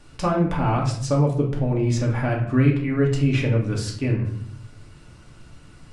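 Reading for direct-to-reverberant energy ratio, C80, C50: -2.0 dB, 10.5 dB, 6.5 dB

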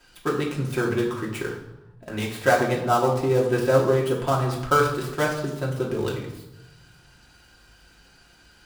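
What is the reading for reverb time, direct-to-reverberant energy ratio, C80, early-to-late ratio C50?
0.95 s, -4.5 dB, 8.5 dB, 6.0 dB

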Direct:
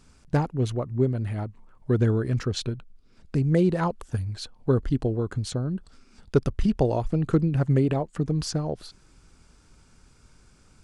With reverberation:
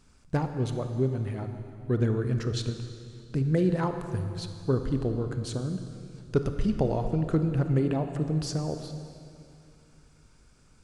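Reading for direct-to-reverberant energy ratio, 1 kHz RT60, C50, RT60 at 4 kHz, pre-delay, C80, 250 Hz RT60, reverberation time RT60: 7.0 dB, 2.4 s, 7.5 dB, 2.4 s, 25 ms, 8.5 dB, 2.8 s, 2.5 s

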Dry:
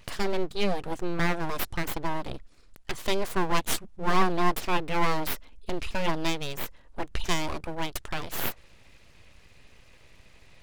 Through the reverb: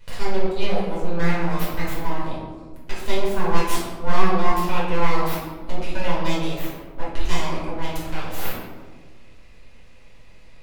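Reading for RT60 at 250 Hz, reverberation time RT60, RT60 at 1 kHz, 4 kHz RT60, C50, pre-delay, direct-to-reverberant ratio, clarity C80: 2.0 s, 1.5 s, 1.3 s, 0.65 s, 0.5 dB, 4 ms, -8.5 dB, 3.5 dB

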